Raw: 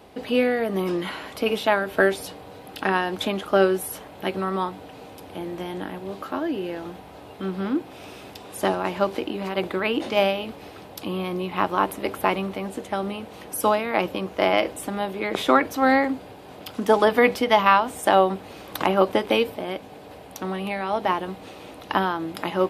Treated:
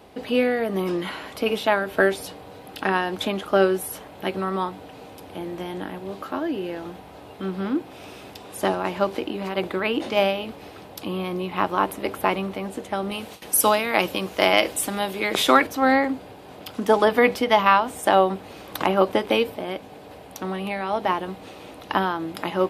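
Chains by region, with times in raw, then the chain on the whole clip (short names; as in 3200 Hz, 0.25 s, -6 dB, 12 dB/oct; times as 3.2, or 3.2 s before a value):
13.11–15.67 gate with hold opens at -29 dBFS, closes at -36 dBFS + high shelf 2500 Hz +11.5 dB
whole clip: dry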